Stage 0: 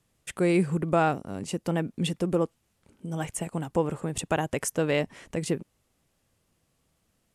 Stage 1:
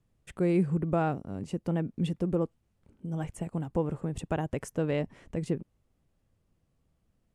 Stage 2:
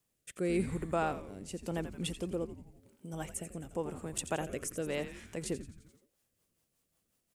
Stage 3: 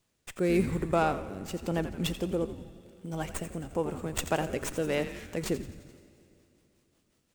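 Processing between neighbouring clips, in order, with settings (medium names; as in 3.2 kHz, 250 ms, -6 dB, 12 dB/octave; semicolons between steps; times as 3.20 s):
tilt EQ -2.5 dB/octave; trim -7 dB
RIAA curve recording; frequency-shifting echo 86 ms, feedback 57%, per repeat -120 Hz, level -11 dB; rotary cabinet horn 0.9 Hz, later 5.5 Hz, at 5.50 s
reverberation RT60 3.0 s, pre-delay 6 ms, DRR 15.5 dB; sliding maximum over 3 samples; trim +6 dB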